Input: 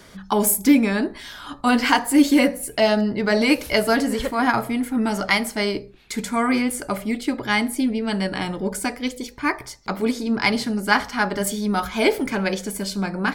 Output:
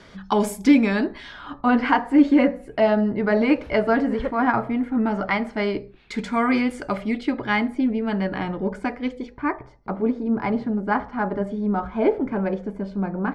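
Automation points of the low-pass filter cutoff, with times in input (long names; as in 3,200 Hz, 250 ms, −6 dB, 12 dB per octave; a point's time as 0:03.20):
0:01.04 4,400 Hz
0:01.66 1,700 Hz
0:05.38 1,700 Hz
0:06.13 3,600 Hz
0:07.09 3,600 Hz
0:07.76 1,900 Hz
0:09.21 1,900 Hz
0:09.65 1,000 Hz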